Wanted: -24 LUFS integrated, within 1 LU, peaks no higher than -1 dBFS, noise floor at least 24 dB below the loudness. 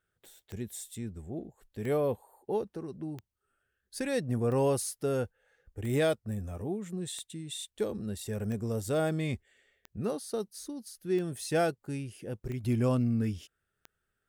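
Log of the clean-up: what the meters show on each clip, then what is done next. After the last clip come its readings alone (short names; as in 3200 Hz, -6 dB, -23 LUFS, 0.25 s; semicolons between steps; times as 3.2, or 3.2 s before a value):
clicks 11; loudness -33.5 LUFS; peak -17.5 dBFS; loudness target -24.0 LUFS
-> de-click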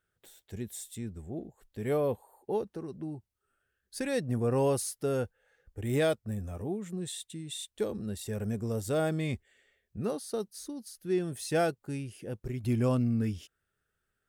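clicks 0; loudness -33.5 LUFS; peak -17.5 dBFS; loudness target -24.0 LUFS
-> gain +9.5 dB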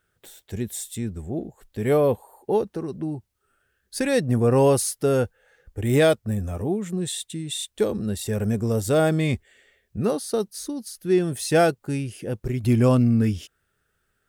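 loudness -24.0 LUFS; peak -8.0 dBFS; noise floor -73 dBFS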